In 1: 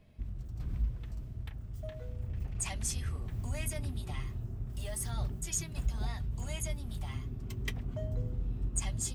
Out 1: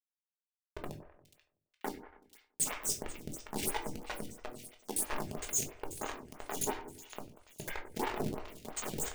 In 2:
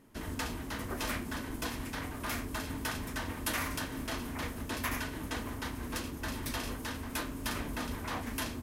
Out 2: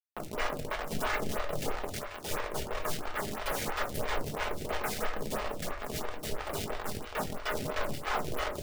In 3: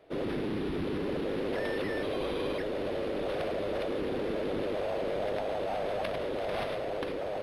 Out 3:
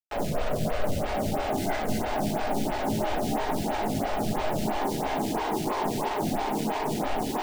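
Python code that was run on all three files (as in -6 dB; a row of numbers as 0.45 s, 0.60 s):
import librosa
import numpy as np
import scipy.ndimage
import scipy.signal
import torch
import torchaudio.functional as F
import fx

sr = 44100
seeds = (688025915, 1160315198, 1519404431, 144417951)

y = fx.octave_divider(x, sr, octaves=2, level_db=-4.0)
y = scipy.signal.sosfilt(scipy.signal.butter(2, 180.0, 'highpass', fs=sr, output='sos'), y)
y = fx.hum_notches(y, sr, base_hz=50, count=5)
y = fx.spec_gate(y, sr, threshold_db=-10, keep='strong')
y = fx.whisperise(y, sr, seeds[0])
y = fx.quant_companded(y, sr, bits=2)
y = y * np.sin(2.0 * np.pi * 250.0 * np.arange(len(y)) / sr)
y = fx.echo_split(y, sr, split_hz=2200.0, low_ms=94, high_ms=486, feedback_pct=52, wet_db=-11.5)
y = fx.room_shoebox(y, sr, seeds[1], volume_m3=290.0, walls='furnished', distance_m=1.4)
y = fx.stagger_phaser(y, sr, hz=3.0)
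y = F.gain(torch.from_numpy(y), 1.5).numpy()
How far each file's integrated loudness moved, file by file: -0.5 LU, +2.0 LU, +4.5 LU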